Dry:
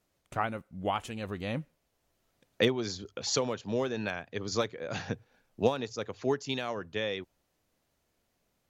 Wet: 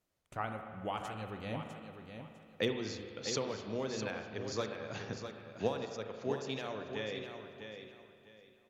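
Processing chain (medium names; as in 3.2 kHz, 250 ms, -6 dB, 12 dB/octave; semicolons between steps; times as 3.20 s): feedback delay 652 ms, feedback 25%, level -8 dB; spring tank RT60 2.2 s, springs 37/45 ms, chirp 45 ms, DRR 5.5 dB; trim -7.5 dB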